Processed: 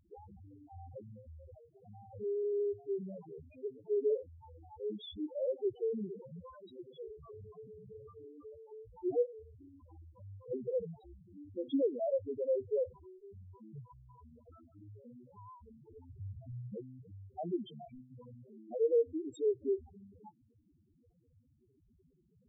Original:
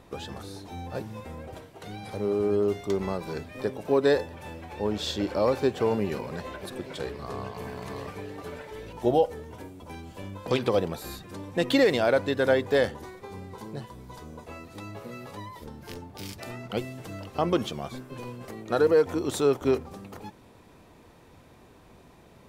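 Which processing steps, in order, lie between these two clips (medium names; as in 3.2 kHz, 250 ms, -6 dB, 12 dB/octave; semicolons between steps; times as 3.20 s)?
16.09–16.74 s: bass shelf 240 Hz +10.5 dB; loudest bins only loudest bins 2; trim -7 dB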